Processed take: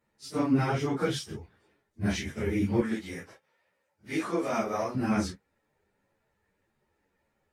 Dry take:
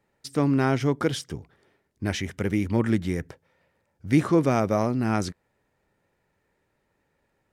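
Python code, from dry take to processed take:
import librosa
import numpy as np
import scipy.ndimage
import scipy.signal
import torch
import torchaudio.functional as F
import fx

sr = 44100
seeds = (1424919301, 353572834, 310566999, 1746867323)

y = fx.phase_scramble(x, sr, seeds[0], window_ms=100)
y = fx.highpass(y, sr, hz=540.0, slope=6, at=(2.8, 4.95))
y = fx.ensemble(y, sr)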